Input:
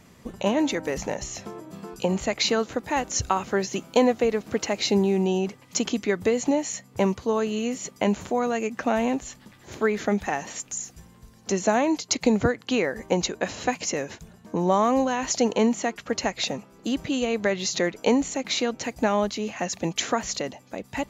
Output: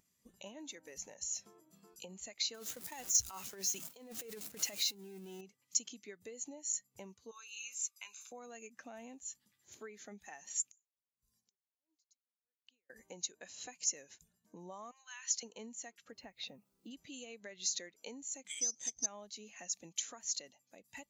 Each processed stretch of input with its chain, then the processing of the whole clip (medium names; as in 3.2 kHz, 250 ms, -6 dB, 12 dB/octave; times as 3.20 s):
2.54–5.41 s: jump at every zero crossing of -25 dBFS + gate with hold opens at -17 dBFS, closes at -21 dBFS + compressor with a negative ratio -22 dBFS, ratio -0.5
7.31–8.32 s: high-pass 1.3 kHz + comb 0.8 ms, depth 58%
10.68–12.90 s: inverted gate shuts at -26 dBFS, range -27 dB + logarithmic tremolo 1.5 Hz, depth 28 dB
14.91–15.43 s: high-pass 1.2 kHz 24 dB/octave + distance through air 57 m
16.12–16.91 s: low-pass 3.8 kHz + tilt EQ -1.5 dB/octave + word length cut 10-bit, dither none
18.47–19.06 s: careless resampling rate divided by 8×, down filtered, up hold + resonant low-pass 6.3 kHz, resonance Q 11
whole clip: compression 3:1, threshold -30 dBFS; pre-emphasis filter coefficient 0.9; spectral contrast expander 1.5:1; trim +2 dB